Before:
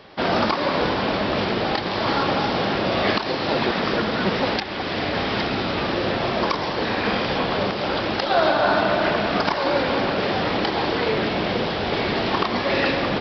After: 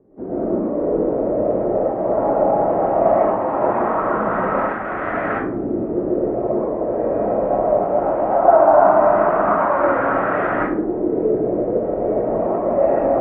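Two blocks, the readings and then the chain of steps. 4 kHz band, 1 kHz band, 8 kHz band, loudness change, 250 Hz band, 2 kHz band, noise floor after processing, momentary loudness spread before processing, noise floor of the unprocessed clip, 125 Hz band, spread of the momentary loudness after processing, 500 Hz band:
below −30 dB, +4.0 dB, can't be measured, +3.5 dB, +2.5 dB, −5.0 dB, −24 dBFS, 4 LU, −27 dBFS, −3.0 dB, 8 LU, +7.0 dB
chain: low-pass filter 2,300 Hz 24 dB per octave
mains-hum notches 50/100/150/200 Hz
auto-filter low-pass saw up 0.19 Hz 340–1,600 Hz
comb and all-pass reverb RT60 0.55 s, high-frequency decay 0.55×, pre-delay 80 ms, DRR −8.5 dB
level −8 dB

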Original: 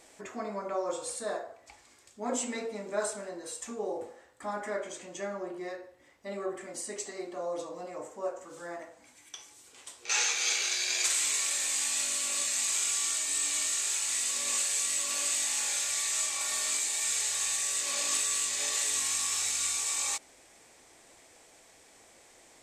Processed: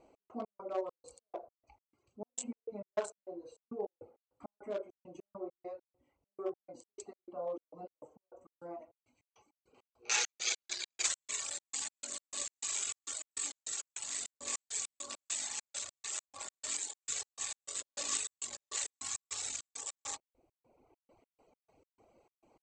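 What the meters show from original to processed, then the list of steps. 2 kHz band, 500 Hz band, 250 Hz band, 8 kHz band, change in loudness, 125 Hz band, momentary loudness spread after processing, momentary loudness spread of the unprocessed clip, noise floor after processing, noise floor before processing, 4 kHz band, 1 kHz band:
−10.0 dB, −6.5 dB, −7.0 dB, −10.0 dB, −9.5 dB, can't be measured, 16 LU, 15 LU, below −85 dBFS, −59 dBFS, −9.5 dB, −8.5 dB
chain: adaptive Wiener filter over 25 samples
Chebyshev low-pass filter 7,700 Hz, order 4
reverb reduction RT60 1.2 s
gate pattern "x.x.xx.x." 101 BPM −60 dB

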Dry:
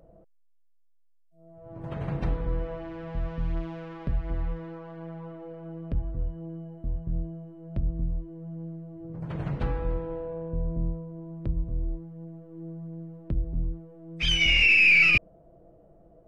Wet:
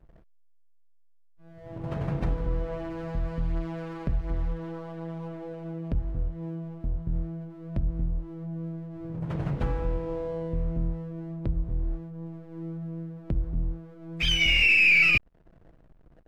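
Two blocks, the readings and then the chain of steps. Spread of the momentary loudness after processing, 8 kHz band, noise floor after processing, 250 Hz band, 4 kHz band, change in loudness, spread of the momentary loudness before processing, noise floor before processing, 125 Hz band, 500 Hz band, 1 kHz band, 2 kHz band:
18 LU, can't be measured, −56 dBFS, +2.0 dB, −0.5 dB, −1.5 dB, 22 LU, −60 dBFS, +1.0 dB, +1.5 dB, +1.0 dB, −1.0 dB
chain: in parallel at +0.5 dB: downward compressor, threshold −32 dBFS, peak gain reduction 15 dB
on the sum: slack as between gear wheels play −40.5 dBFS
level −2.5 dB

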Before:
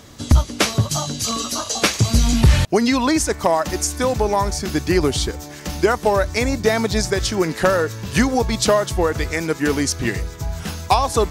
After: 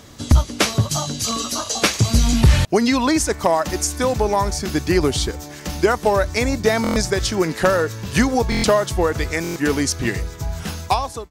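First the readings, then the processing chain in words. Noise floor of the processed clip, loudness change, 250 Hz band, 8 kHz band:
−36 dBFS, 0.0 dB, 0.0 dB, −0.5 dB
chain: fade-out on the ending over 0.52 s
buffer that repeats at 0:06.82/0:08.50/0:09.42, samples 1,024, times 5

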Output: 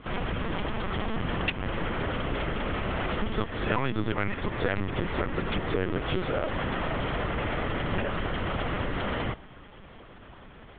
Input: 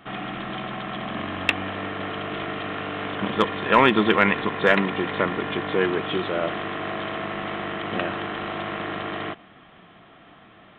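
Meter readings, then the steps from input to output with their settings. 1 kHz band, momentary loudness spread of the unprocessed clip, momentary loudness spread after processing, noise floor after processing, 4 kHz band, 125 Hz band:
−7.5 dB, 13 LU, 11 LU, −48 dBFS, −6.0 dB, +3.0 dB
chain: parametric band 230 Hz +7 dB 0.86 octaves
downward compressor 8 to 1, threshold −24 dBFS, peak gain reduction 14 dB
linear-prediction vocoder at 8 kHz pitch kept

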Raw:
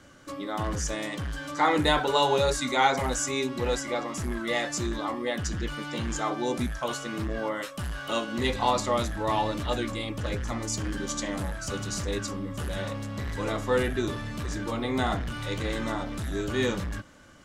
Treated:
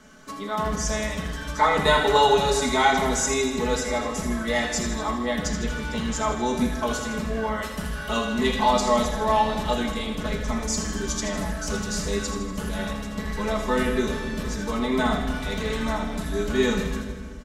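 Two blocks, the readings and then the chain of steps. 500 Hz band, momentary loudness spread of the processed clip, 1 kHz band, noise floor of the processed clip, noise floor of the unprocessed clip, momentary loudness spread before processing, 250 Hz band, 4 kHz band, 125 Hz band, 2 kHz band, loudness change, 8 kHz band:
+4.5 dB, 10 LU, +5.0 dB, −34 dBFS, −39 dBFS, 10 LU, +5.0 dB, +3.5 dB, +1.0 dB, +4.5 dB, +4.0 dB, +5.0 dB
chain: comb filter 4.6 ms, depth 75%
on a send: delay with a high-pass on its return 80 ms, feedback 60%, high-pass 3,100 Hz, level −8 dB
on the sum: rectangular room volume 2,100 cubic metres, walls mixed, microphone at 1.4 metres

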